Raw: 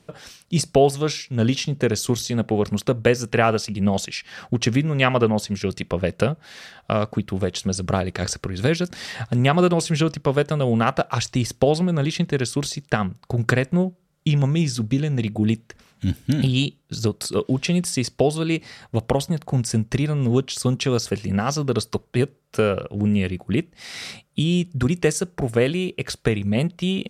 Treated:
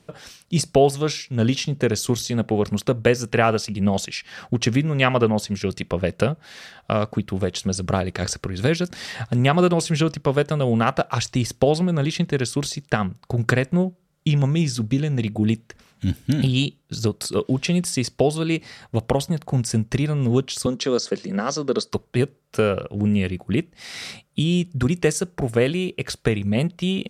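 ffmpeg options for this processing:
ffmpeg -i in.wav -filter_complex "[0:a]asettb=1/sr,asplit=3[link_01][link_02][link_03];[link_01]atrim=end=20.664[link_04];[link_02]atrim=start=20.66:end=21.92,asetpts=PTS-STARTPTS,afade=type=in:duration=0.004:curve=qsin,afade=type=out:start_time=1.256:duration=0.004:curve=qsin,highpass=frequency=190:width=0.5412,highpass=frequency=190:width=1.3066,equalizer=frequency=510:width_type=q:width=4:gain=4,equalizer=frequency=790:width_type=q:width=4:gain=-5,equalizer=frequency=2600:width_type=q:width=4:gain=-8,equalizer=frequency=4300:width_type=q:width=4:gain=3,lowpass=frequency=7800:width=0.5412,lowpass=frequency=7800:width=1.3066[link_05];[link_03]atrim=start=21.916[link_06];[link_04][link_05]acrossfade=duration=0.004:curve1=hsin:curve2=qsin[link_07];[link_07][link_06]acrossfade=duration=0.004:curve1=qsin:curve2=hsin" out.wav

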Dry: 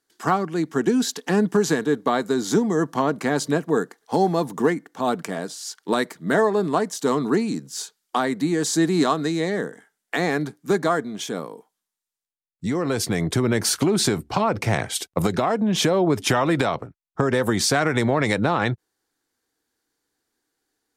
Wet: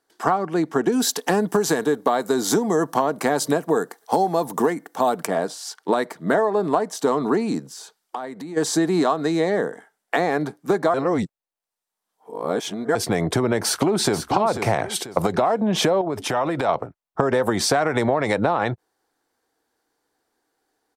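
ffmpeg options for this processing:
ffmpeg -i in.wav -filter_complex "[0:a]asettb=1/sr,asplit=3[link_01][link_02][link_03];[link_01]atrim=end=0.924[link_04];[link_02]atrim=start=0.92:end=5.27,asetpts=PTS-STARTPTS,afade=type=in:duration=0.004:curve=qsin,afade=type=out:start_time=4.346:duration=0.004:curve=qsin,aemphasis=mode=production:type=50kf[link_05];[link_03]atrim=start=5.266[link_06];[link_04][link_05]acrossfade=duration=0.004:curve1=hsin:curve2=qsin[link_07];[link_07][link_06]acrossfade=duration=0.004:curve1=qsin:curve2=hsin,asplit=3[link_08][link_09][link_10];[link_08]afade=type=out:start_time=7.66:duration=0.02[link_11];[link_09]acompressor=threshold=-35dB:ratio=6:attack=3.2:release=140:knee=1:detection=peak,afade=type=in:start_time=7.66:duration=0.02,afade=type=out:start_time=8.56:duration=0.02[link_12];[link_10]afade=type=in:start_time=8.56:duration=0.02[link_13];[link_11][link_12][link_13]amix=inputs=3:normalize=0,asplit=2[link_14][link_15];[link_15]afade=type=in:start_time=13.63:duration=0.01,afade=type=out:start_time=14.19:duration=0.01,aecho=0:1:490|980|1470:0.334965|0.10049|0.0301469[link_16];[link_14][link_16]amix=inputs=2:normalize=0,asettb=1/sr,asplit=3[link_17][link_18][link_19];[link_17]atrim=end=16.014[link_20];[link_18]atrim=start=16.01:end=16.69,asetpts=PTS-STARTPTS,afade=type=in:duration=0.004:curve=qsin,afade=type=out:start_time=0.676:duration=0.004:curve=qsin,acompressor=threshold=-24dB:ratio=6:attack=3.2:release=140:knee=1:detection=peak[link_21];[link_19]atrim=start=16.686[link_22];[link_20][link_21]acrossfade=duration=0.004:curve1=hsin:curve2=qsin[link_23];[link_23][link_22]acrossfade=duration=0.004:curve1=qsin:curve2=hsin,asplit=3[link_24][link_25][link_26];[link_24]atrim=end=10.942[link_27];[link_25]atrim=start=10.938:end=12.952,asetpts=PTS-STARTPTS,areverse[link_28];[link_26]atrim=start=12.948[link_29];[link_27][link_28]acrossfade=duration=0.004:curve1=hsin:curve2=hsin[link_30];[link_30][link_29]acrossfade=duration=0.004:curve1=hsin:curve2=hsin,equalizer=frequency=720:width_type=o:width=1.8:gain=10.5,bandreject=frequency=6800:width=20,acompressor=threshold=-16dB:ratio=6" out.wav

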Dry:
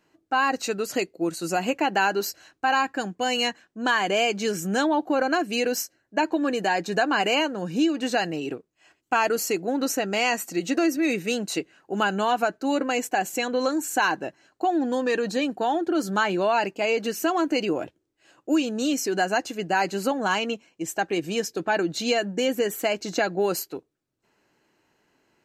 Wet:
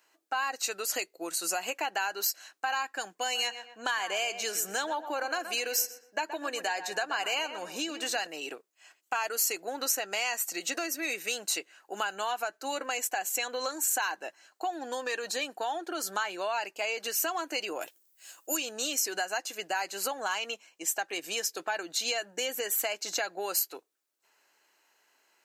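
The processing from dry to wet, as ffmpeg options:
ffmpeg -i in.wav -filter_complex "[0:a]asettb=1/sr,asplit=3[link_01][link_02][link_03];[link_01]atrim=end=3.134[link_04];[link_02]atrim=start=3.13:end=8.27,asetpts=PTS-STARTPTS,afade=type=in:duration=0.004:curve=qsin,afade=type=out:start_time=5.136:duration=0.004:curve=qsin,asplit=2[link_05][link_06];[link_06]adelay=122,lowpass=frequency=2100:poles=1,volume=-11.5dB,asplit=2[link_07][link_08];[link_08]adelay=122,lowpass=frequency=2100:poles=1,volume=0.34,asplit=2[link_09][link_10];[link_10]adelay=122,lowpass=frequency=2100:poles=1,volume=0.34,asplit=2[link_11][link_12];[link_12]adelay=122,lowpass=frequency=2100:poles=1,volume=0.34[link_13];[link_05][link_07][link_09][link_11][link_13]amix=inputs=5:normalize=0,atrim=end_sample=226674[link_14];[link_03]atrim=start=8.266[link_15];[link_04][link_14]acrossfade=duration=0.004:curve1=hsin:curve2=qsin[link_16];[link_16][link_15]acrossfade=duration=0.004:curve1=qsin:curve2=hsin,asettb=1/sr,asplit=3[link_17][link_18][link_19];[link_17]atrim=end=17.814[link_20];[link_18]atrim=start=17.81:end=18.57,asetpts=PTS-STARTPTS,afade=type=in:duration=0.004:curve=qsin,afade=type=out:start_time=0.756:duration=0.004:curve=qsin,aemphasis=mode=production:type=75fm[link_21];[link_19]atrim=start=18.566[link_22];[link_20][link_21]acrossfade=duration=0.004:curve1=hsin:curve2=qsin[link_23];[link_23][link_22]acrossfade=duration=0.004:curve1=qsin:curve2=hsin,highpass=700,acompressor=threshold=-32dB:ratio=2.5,highshelf=frequency=6400:gain=10.5" out.wav

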